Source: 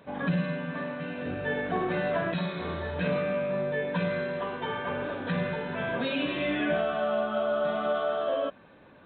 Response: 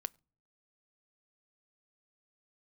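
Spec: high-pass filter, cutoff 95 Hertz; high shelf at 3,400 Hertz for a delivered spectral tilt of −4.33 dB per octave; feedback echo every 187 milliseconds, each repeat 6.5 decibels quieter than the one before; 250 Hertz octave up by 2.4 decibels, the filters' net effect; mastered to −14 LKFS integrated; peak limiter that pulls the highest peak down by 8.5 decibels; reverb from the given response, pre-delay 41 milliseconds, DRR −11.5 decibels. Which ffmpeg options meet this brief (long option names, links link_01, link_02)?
-filter_complex "[0:a]highpass=95,equalizer=frequency=250:width_type=o:gain=3.5,highshelf=frequency=3400:gain=5.5,alimiter=limit=-23dB:level=0:latency=1,aecho=1:1:187|374|561|748|935|1122:0.473|0.222|0.105|0.0491|0.0231|0.0109,asplit=2[link_01][link_02];[1:a]atrim=start_sample=2205,adelay=41[link_03];[link_02][link_03]afir=irnorm=-1:irlink=0,volume=13.5dB[link_04];[link_01][link_04]amix=inputs=2:normalize=0,volume=4.5dB"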